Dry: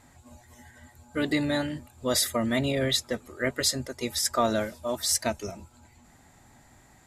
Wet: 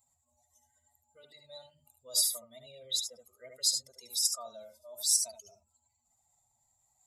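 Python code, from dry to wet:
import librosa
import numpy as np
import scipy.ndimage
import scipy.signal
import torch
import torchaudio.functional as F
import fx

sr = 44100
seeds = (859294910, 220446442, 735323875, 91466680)

p1 = fx.spec_expand(x, sr, power=1.8)
p2 = fx.rider(p1, sr, range_db=10, speed_s=0.5)
p3 = p1 + (p2 * librosa.db_to_amplitude(3.0))
p4 = F.preemphasis(torch.from_numpy(p3), 0.97).numpy()
p5 = fx.fixed_phaser(p4, sr, hz=720.0, stages=4)
p6 = fx.echo_multitap(p5, sr, ms=(70, 78), db=(-9.5, -9.5))
y = p6 * librosa.db_to_amplitude(-6.5)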